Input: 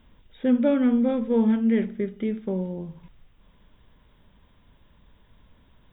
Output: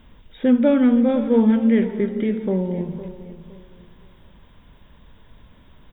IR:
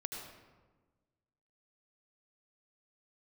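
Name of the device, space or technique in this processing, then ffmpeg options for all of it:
ducked reverb: -filter_complex "[0:a]asplit=3[link_01][link_02][link_03];[1:a]atrim=start_sample=2205[link_04];[link_02][link_04]afir=irnorm=-1:irlink=0[link_05];[link_03]apad=whole_len=261323[link_06];[link_05][link_06]sidechaincompress=threshold=-28dB:ratio=8:attack=16:release=273,volume=-3dB[link_07];[link_01][link_07]amix=inputs=2:normalize=0,aecho=1:1:511|1022|1533:0.2|0.0559|0.0156,volume=3.5dB"

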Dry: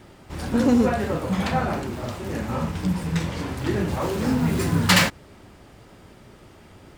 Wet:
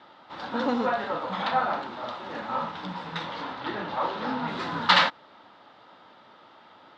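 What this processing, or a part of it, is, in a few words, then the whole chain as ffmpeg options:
phone earpiece: -filter_complex "[0:a]asettb=1/sr,asplit=3[link_01][link_02][link_03];[link_01]atrim=end=3.534[link_04];[link_02]atrim=start=3.53:end=4.48,asetpts=PTS-STARTPTS,afade=type=in:duration=0.004:curve=qsin,afade=type=out:start_time=0.946:duration=0.004:curve=qsin,lowpass=5500[link_05];[link_03]atrim=start=4.476[link_06];[link_04][link_05]acrossfade=duration=0.004:curve1=hsin:curve2=qsin[link_07];[link_07][link_06]acrossfade=duration=0.004:curve1=qsin:curve2=hsin,highpass=370,equalizer=frequency=390:width_type=q:width=4:gain=-9,equalizer=frequency=900:width_type=q:width=4:gain=7,equalizer=frequency=1300:width_type=q:width=4:gain=6,equalizer=frequency=2400:width_type=q:width=4:gain=-5,equalizer=frequency=3700:width_type=q:width=4:gain=7,lowpass=frequency=4200:width=0.5412,lowpass=frequency=4200:width=1.3066,volume=-2dB"

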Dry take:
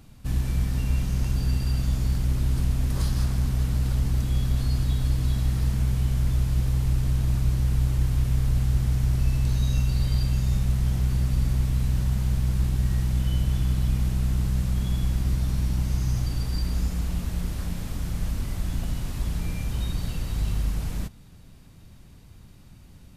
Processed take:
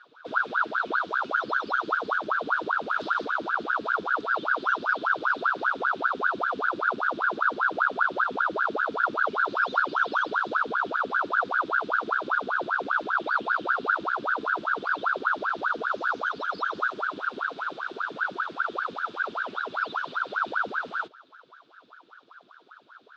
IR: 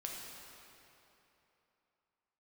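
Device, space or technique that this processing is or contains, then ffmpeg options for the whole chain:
voice changer toy: -af "aeval=exprs='val(0)*sin(2*PI*850*n/s+850*0.85/5.1*sin(2*PI*5.1*n/s))':channel_layout=same,highpass=470,equalizer=frequency=560:width_type=q:width=4:gain=-4,equalizer=frequency=840:width_type=q:width=4:gain=-6,equalizer=frequency=1400:width_type=q:width=4:gain=6,equalizer=frequency=2000:width_type=q:width=4:gain=-9,equalizer=frequency=3600:width_type=q:width=4:gain=8,lowpass=frequency=4300:width=0.5412,lowpass=frequency=4300:width=1.3066,volume=-1dB"

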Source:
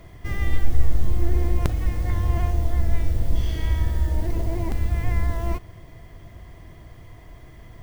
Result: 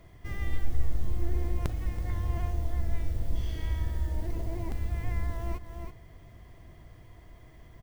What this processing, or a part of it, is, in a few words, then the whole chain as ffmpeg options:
ducked delay: -filter_complex "[0:a]asplit=3[link_01][link_02][link_03];[link_02]adelay=327,volume=-6dB[link_04];[link_03]apad=whole_len=359406[link_05];[link_04][link_05]sidechaincompress=threshold=-34dB:ratio=8:attack=16:release=163[link_06];[link_01][link_06]amix=inputs=2:normalize=0,volume=-8.5dB"

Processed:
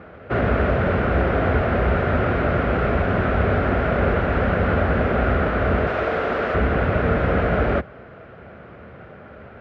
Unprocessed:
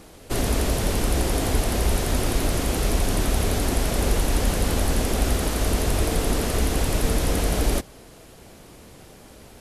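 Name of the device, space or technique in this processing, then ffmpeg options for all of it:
bass cabinet: -filter_complex "[0:a]highpass=frequency=65:width=0.5412,highpass=frequency=65:width=1.3066,equalizer=frequency=300:width_type=q:width=4:gain=-7,equalizer=frequency=600:width_type=q:width=4:gain=4,equalizer=frequency=920:width_type=q:width=4:gain=-5,equalizer=frequency=1400:width_type=q:width=4:gain=9,lowpass=frequency=2200:width=0.5412,lowpass=frequency=2200:width=1.3066,asettb=1/sr,asplit=3[link_01][link_02][link_03];[link_01]atrim=end=5.874[link_04];[link_02]atrim=start=5.87:end=6.55,asetpts=PTS-STARTPTS,afade=type=in:duration=0.004:curve=qsin,afade=type=out:start_time=0.676:duration=0.004:curve=qsin,bass=frequency=250:gain=-13,treble=frequency=4000:gain=7[link_05];[link_03]atrim=start=6.546[link_06];[link_04][link_05]acrossfade=duration=0.004:curve1=hsin:curve2=qsin[link_07];[link_07][link_06]acrossfade=duration=0.004:curve1=qsin:curve2=hsin,volume=6dB"

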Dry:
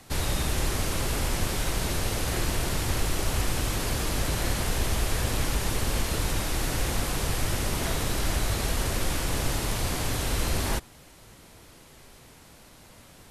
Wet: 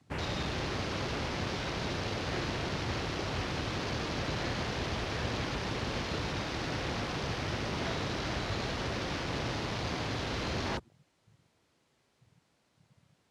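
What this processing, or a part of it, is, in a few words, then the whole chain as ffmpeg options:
over-cleaned archive recording: -af "highpass=100,lowpass=6800,afwtdn=0.01,volume=-3dB"

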